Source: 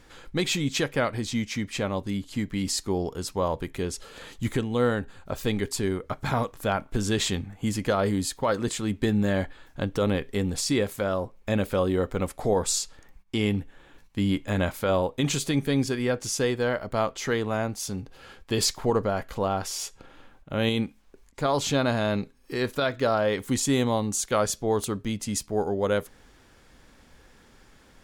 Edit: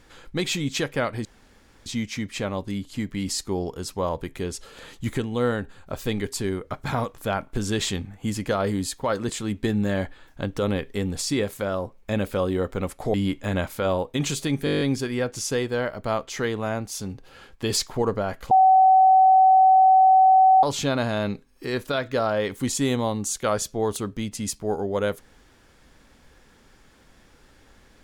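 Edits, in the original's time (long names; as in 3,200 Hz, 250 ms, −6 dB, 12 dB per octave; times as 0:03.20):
0:01.25: splice in room tone 0.61 s
0:12.53–0:14.18: remove
0:15.69: stutter 0.02 s, 9 plays
0:19.39–0:21.51: beep over 758 Hz −11.5 dBFS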